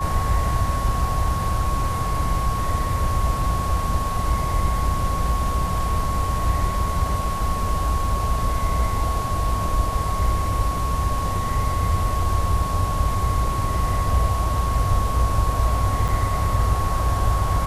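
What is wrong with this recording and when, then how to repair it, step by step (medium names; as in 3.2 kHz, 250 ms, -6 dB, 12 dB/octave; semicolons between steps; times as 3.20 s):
whine 1.1 kHz -26 dBFS
16.08–16.09 s: dropout 6.1 ms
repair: band-stop 1.1 kHz, Q 30; interpolate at 16.08 s, 6.1 ms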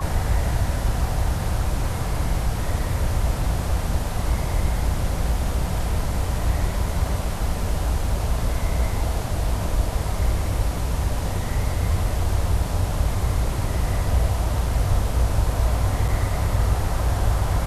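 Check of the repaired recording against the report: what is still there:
nothing left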